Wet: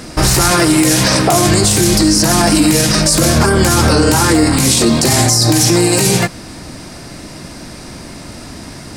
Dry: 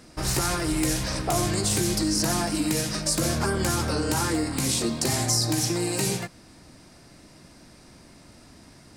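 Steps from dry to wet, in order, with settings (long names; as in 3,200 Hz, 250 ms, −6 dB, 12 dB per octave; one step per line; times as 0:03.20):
0:00.51–0:01.49: high-pass filter 120 Hz 12 dB per octave
boost into a limiter +20.5 dB
level −1 dB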